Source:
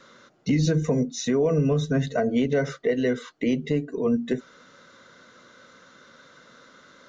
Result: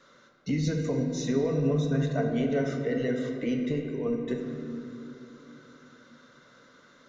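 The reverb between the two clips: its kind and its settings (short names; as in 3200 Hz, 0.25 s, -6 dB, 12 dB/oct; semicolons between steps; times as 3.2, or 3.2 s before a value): shoebox room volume 130 m³, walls hard, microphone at 0.32 m; gain -7 dB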